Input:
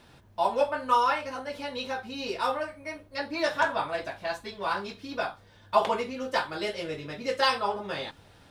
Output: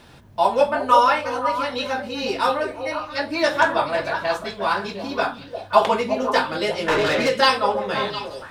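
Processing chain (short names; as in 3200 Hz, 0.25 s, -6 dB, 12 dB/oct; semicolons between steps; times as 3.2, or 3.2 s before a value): delay with a stepping band-pass 0.176 s, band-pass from 180 Hz, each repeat 1.4 oct, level -1.5 dB; 6.88–7.29 overdrive pedal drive 26 dB, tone 2800 Hz, clips at -19 dBFS; gain +7.5 dB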